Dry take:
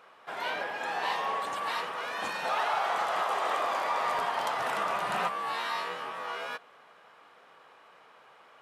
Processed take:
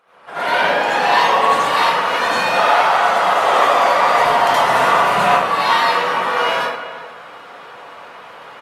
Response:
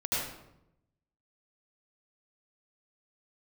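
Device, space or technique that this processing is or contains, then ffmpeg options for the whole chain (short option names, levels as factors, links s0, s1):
speakerphone in a meeting room: -filter_complex "[1:a]atrim=start_sample=2205[s0];[0:a][s0]afir=irnorm=-1:irlink=0,asplit=2[s1][s2];[s2]adelay=370,highpass=300,lowpass=3400,asoftclip=type=hard:threshold=0.141,volume=0.2[s3];[s1][s3]amix=inputs=2:normalize=0,dynaudnorm=f=200:g=3:m=3.98" -ar 48000 -c:a libopus -b:a 32k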